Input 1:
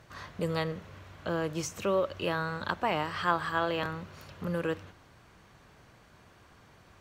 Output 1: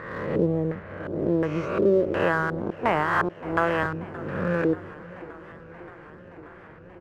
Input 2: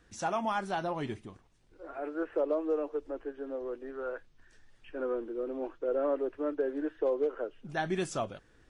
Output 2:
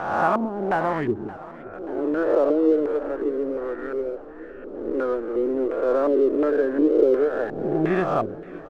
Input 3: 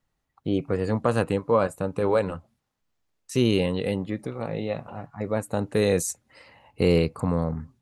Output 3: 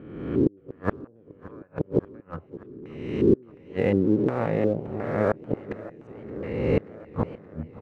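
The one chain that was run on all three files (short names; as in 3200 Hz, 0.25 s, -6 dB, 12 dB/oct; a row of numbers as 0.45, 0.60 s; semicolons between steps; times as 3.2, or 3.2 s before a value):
spectral swells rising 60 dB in 1.30 s; high shelf 3400 Hz -11.5 dB; flipped gate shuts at -13 dBFS, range -35 dB; LFO low-pass square 1.4 Hz 370–1900 Hz; in parallel at -8 dB: crossover distortion -36.5 dBFS; on the sum: dynamic EQ 2100 Hz, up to -4 dB, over -43 dBFS, Q 1.6; echo 0.57 s -23 dB; warbling echo 0.577 s, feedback 77%, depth 163 cents, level -20 dB; normalise peaks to -6 dBFS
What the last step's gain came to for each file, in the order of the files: +3.0, +5.0, 0.0 dB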